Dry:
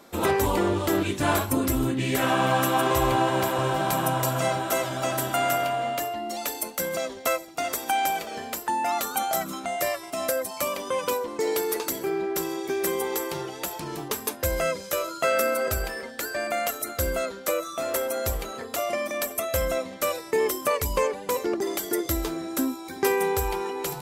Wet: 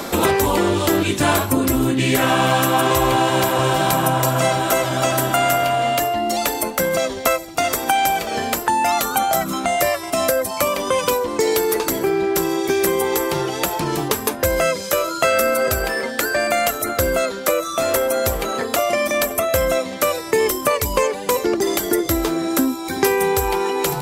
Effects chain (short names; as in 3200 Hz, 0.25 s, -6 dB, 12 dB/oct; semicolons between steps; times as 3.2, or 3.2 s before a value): three-band squash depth 70%; gain +7 dB